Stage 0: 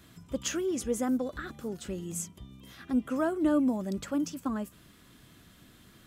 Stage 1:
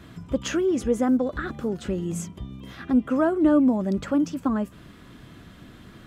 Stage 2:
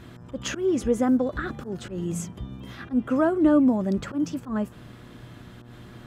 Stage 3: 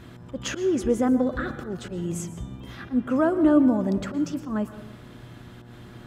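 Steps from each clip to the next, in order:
low-pass filter 1,900 Hz 6 dB per octave; in parallel at −1.5 dB: downward compressor, threshold −38 dBFS, peak gain reduction 15.5 dB; on the sum: level +6 dB
volume swells 118 ms; hum with harmonics 120 Hz, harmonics 15, −48 dBFS −7 dB per octave
dense smooth reverb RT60 0.9 s, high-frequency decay 0.5×, pre-delay 105 ms, DRR 12 dB

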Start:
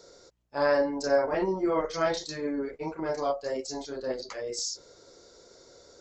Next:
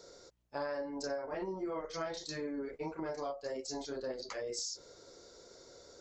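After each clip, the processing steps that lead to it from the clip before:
downward compressor 6 to 1, threshold −34 dBFS, peak gain reduction 14.5 dB
level −2 dB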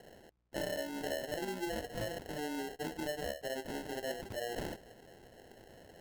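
decimation without filtering 37×

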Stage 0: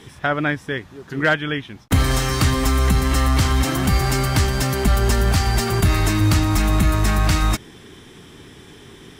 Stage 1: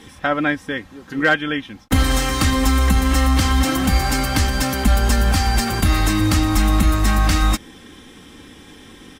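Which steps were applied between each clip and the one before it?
comb filter 3.8 ms, depth 57%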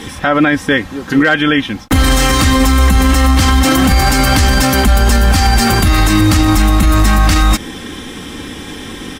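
boost into a limiter +16 dB
level −1 dB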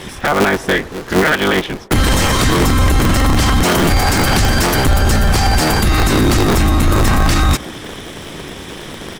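sub-harmonics by changed cycles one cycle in 3, inverted
delay with a band-pass on its return 116 ms, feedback 53%, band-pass 570 Hz, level −18 dB
level −2.5 dB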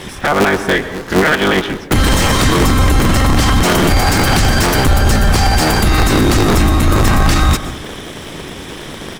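stylus tracing distortion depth 0.026 ms
convolution reverb RT60 0.80 s, pre-delay 110 ms, DRR 12.5 dB
level +1 dB

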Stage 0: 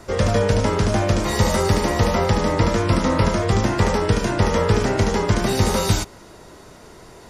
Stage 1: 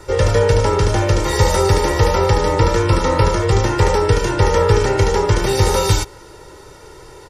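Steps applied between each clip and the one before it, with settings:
comb filter 2.2 ms, depth 75%
level +1.5 dB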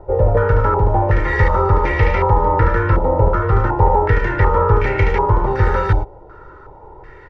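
low-shelf EQ 84 Hz +10 dB
low-pass on a step sequencer 2.7 Hz 730–2,200 Hz
level −4.5 dB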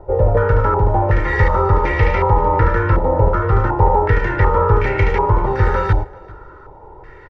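single-tap delay 391 ms −23.5 dB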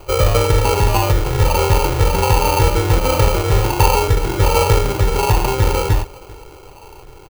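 sample-rate reduction 1,800 Hz, jitter 0%

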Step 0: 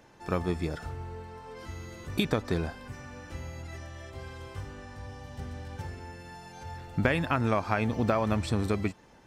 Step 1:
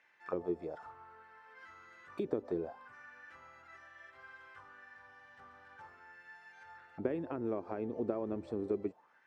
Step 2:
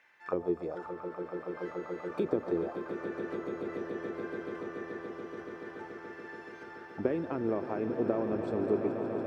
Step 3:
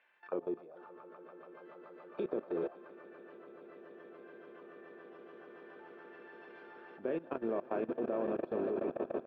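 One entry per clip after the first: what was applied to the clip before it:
dynamic equaliser 7,700 Hz, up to +5 dB, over −56 dBFS, Q 0.78; envelope filter 370–2,100 Hz, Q 3.3, down, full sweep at −24 dBFS
echo that builds up and dies away 143 ms, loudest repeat 8, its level −11.5 dB; level +4.5 dB
loudspeaker in its box 280–3,300 Hz, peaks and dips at 300 Hz −6 dB, 450 Hz −3 dB, 850 Hz −5 dB, 1,300 Hz −4 dB, 2,000 Hz −9 dB; double-tracking delay 31 ms −11 dB; output level in coarse steps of 19 dB; level +4 dB

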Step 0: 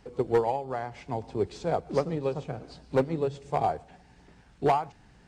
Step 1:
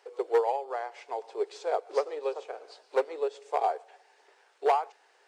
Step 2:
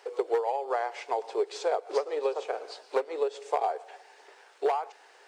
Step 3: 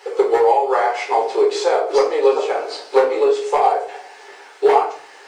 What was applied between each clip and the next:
elliptic high-pass filter 420 Hz, stop band 60 dB
downward compressor 12 to 1, threshold −31 dBFS, peak gain reduction 12.5 dB; level +7.5 dB
parametric band 630 Hz −4.5 dB 0.53 octaves; rectangular room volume 330 cubic metres, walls furnished, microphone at 4.1 metres; level +7.5 dB

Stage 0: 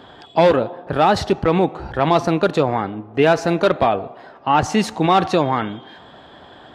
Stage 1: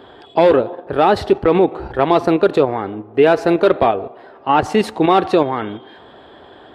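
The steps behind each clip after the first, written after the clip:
graphic EQ with 15 bands 160 Hz −5 dB, 400 Hz +7 dB, 6,300 Hz −9 dB
in parallel at +2 dB: output level in coarse steps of 16 dB
on the sum: level −4.5 dB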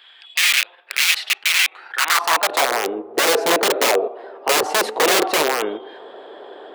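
wrap-around overflow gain 12 dB
high-pass filter sweep 2,400 Hz → 440 Hz, 0:01.67–0:02.81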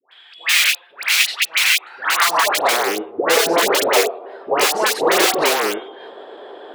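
all-pass dispersion highs, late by 121 ms, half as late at 1,000 Hz
level +1.5 dB

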